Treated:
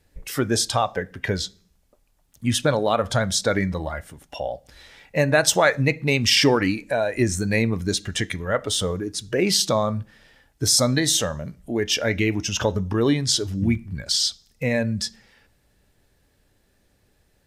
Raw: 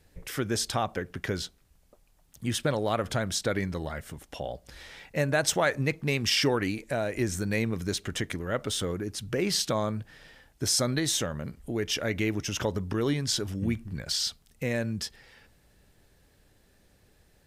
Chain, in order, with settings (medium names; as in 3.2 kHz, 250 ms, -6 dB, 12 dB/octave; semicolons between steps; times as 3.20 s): spectral noise reduction 9 dB; on a send: reverberation RT60 0.45 s, pre-delay 3 ms, DRR 14 dB; on the sum: trim +7.5 dB